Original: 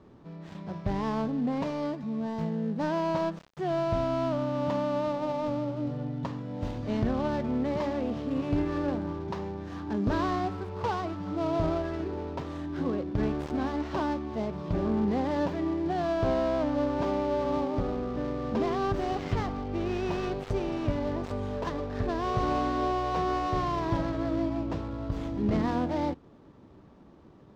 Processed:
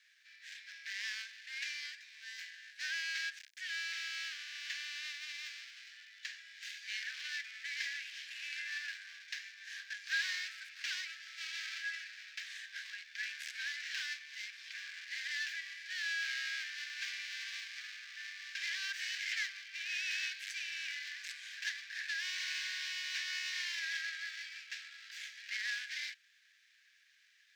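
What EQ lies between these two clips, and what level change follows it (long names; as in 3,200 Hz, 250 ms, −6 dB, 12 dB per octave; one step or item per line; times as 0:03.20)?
Chebyshev high-pass with heavy ripple 1,600 Hz, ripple 3 dB
+9.0 dB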